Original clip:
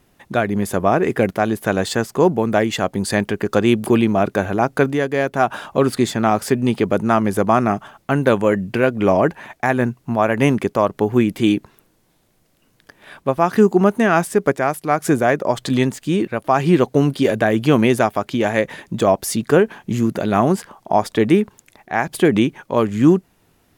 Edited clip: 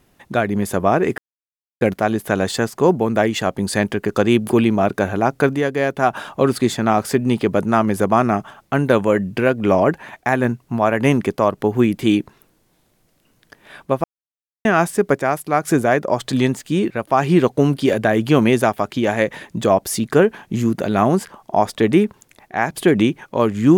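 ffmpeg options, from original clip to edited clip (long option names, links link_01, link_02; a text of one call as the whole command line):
ffmpeg -i in.wav -filter_complex "[0:a]asplit=4[link_01][link_02][link_03][link_04];[link_01]atrim=end=1.18,asetpts=PTS-STARTPTS,afade=type=out:start_time=1.176:duration=0.004:curve=hsin,apad=pad_dur=0.63[link_05];[link_02]atrim=start=1.18:end=13.41,asetpts=PTS-STARTPTS,afade=type=in:duration=0.004:curve=hsin,afade=type=out:start_time=12.226:duration=0.004:curve=hsin[link_06];[link_03]atrim=start=13.41:end=14.02,asetpts=PTS-STARTPTS,volume=0[link_07];[link_04]atrim=start=14.02,asetpts=PTS-STARTPTS,afade=type=in:duration=0.004:curve=hsin[link_08];[link_05][link_06][link_07][link_08]concat=n=4:v=0:a=1" out.wav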